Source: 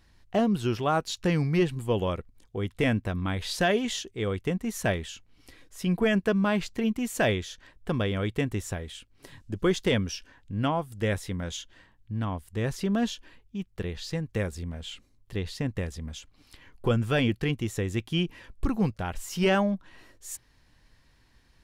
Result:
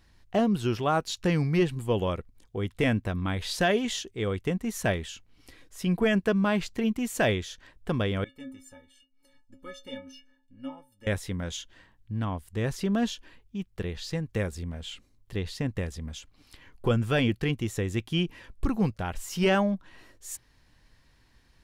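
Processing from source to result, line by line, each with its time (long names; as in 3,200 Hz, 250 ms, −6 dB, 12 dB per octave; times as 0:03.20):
0:08.24–0:11.07: stiff-string resonator 260 Hz, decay 0.35 s, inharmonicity 0.03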